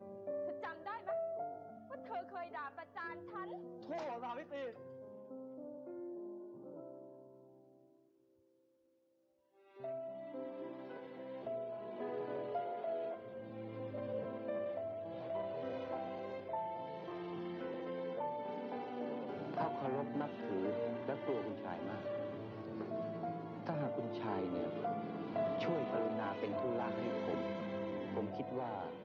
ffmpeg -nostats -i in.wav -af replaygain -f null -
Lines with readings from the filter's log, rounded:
track_gain = +23.2 dB
track_peak = 0.042